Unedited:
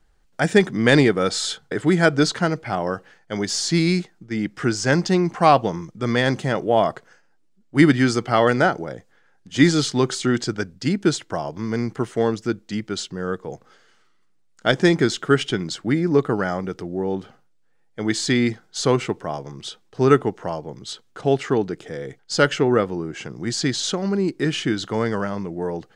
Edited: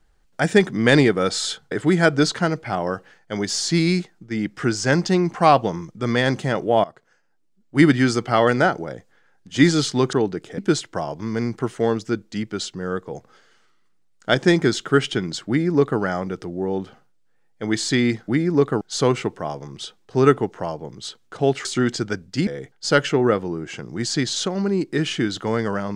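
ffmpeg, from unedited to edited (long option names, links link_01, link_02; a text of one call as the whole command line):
ffmpeg -i in.wav -filter_complex "[0:a]asplit=8[link_01][link_02][link_03][link_04][link_05][link_06][link_07][link_08];[link_01]atrim=end=6.84,asetpts=PTS-STARTPTS,afade=type=out:start_time=6.836:duration=0.004:curve=hsin:silence=0.112202[link_09];[link_02]atrim=start=6.84:end=10.132,asetpts=PTS-STARTPTS,afade=type=in:duration=1:silence=0.112202[link_10];[link_03]atrim=start=21.488:end=21.942[link_11];[link_04]atrim=start=10.948:end=18.652[link_12];[link_05]atrim=start=15.848:end=16.382[link_13];[link_06]atrim=start=18.648:end=21.492[link_14];[link_07]atrim=start=10.128:end=10.952[link_15];[link_08]atrim=start=21.938[link_16];[link_09][link_10]concat=n=2:v=0:a=1[link_17];[link_17][link_11]acrossfade=duration=0.004:curve1=hsin:curve2=hsin[link_18];[link_18][link_12]acrossfade=duration=0.004:curve1=hsin:curve2=hsin[link_19];[link_19][link_13]acrossfade=duration=0.004:curve1=hsin:curve2=hsin[link_20];[link_20][link_14]acrossfade=duration=0.004:curve1=hsin:curve2=hsin[link_21];[link_21][link_15]acrossfade=duration=0.004:curve1=hsin:curve2=hsin[link_22];[link_22][link_16]acrossfade=duration=0.004:curve1=hsin:curve2=hsin" out.wav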